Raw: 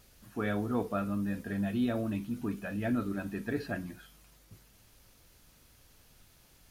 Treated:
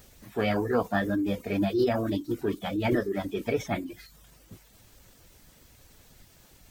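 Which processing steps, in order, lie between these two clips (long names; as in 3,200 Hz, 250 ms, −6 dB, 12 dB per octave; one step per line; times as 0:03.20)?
formants moved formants +5 semitones
reverb reduction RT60 0.54 s
level +6.5 dB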